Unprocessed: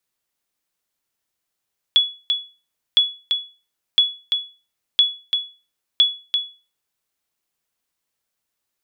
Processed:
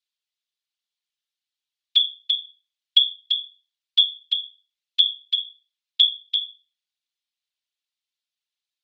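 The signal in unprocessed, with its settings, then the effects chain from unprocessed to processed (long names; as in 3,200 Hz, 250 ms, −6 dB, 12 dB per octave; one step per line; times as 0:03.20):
ping with an echo 3,390 Hz, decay 0.33 s, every 1.01 s, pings 5, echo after 0.34 s, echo −6 dB −6.5 dBFS
resonant band-pass 3,600 Hz, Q 2.3
random phases in short frames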